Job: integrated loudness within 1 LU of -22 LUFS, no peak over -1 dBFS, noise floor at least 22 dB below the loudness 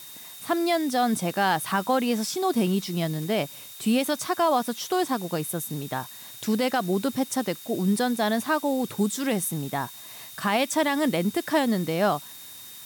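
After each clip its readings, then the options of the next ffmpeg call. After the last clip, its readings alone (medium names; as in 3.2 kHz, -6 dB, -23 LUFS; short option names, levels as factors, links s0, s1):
steady tone 3.7 kHz; tone level -48 dBFS; noise floor -43 dBFS; noise floor target -48 dBFS; loudness -26.0 LUFS; peak level -13.0 dBFS; loudness target -22.0 LUFS
-> -af "bandreject=f=3700:w=30"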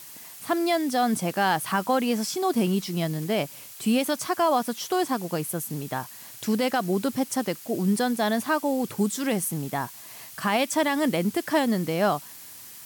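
steady tone not found; noise floor -44 dBFS; noise floor target -48 dBFS
-> -af "afftdn=nr=6:nf=-44"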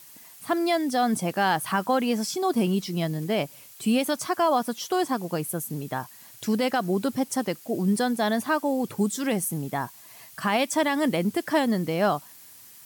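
noise floor -49 dBFS; loudness -26.0 LUFS; peak level -13.5 dBFS; loudness target -22.0 LUFS
-> -af "volume=1.58"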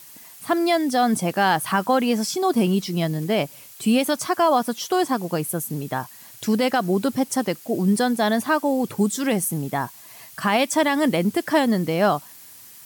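loudness -22.0 LUFS; peak level -9.5 dBFS; noise floor -45 dBFS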